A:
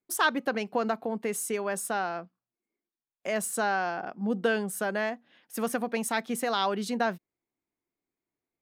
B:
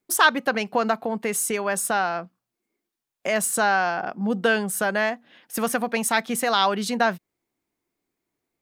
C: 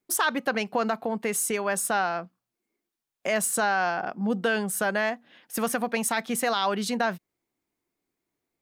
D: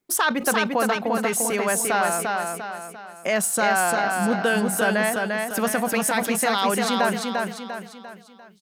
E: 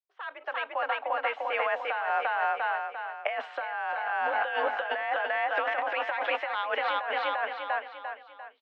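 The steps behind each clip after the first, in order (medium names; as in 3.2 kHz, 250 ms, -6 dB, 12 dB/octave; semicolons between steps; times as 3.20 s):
dynamic bell 330 Hz, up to -6 dB, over -40 dBFS, Q 0.84; trim +8.5 dB
peak limiter -12.5 dBFS, peak gain reduction 8 dB; trim -2 dB
feedback delay 347 ms, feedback 43%, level -3.5 dB; decay stretcher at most 120 dB/s; trim +3 dB
fade-in on the opening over 2.63 s; mistuned SSB +55 Hz 500–3000 Hz; compressor with a negative ratio -29 dBFS, ratio -1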